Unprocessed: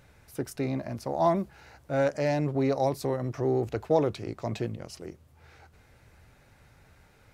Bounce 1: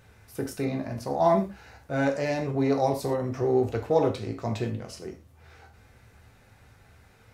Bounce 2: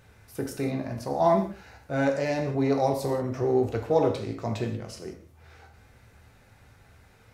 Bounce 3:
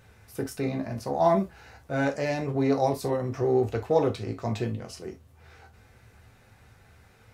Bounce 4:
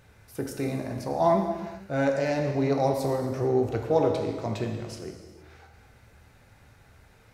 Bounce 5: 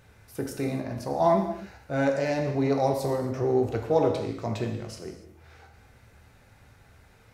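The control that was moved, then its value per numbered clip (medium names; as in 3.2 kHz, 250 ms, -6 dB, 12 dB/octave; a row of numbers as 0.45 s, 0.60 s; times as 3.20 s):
gated-style reverb, gate: 140 ms, 210 ms, 90 ms, 490 ms, 320 ms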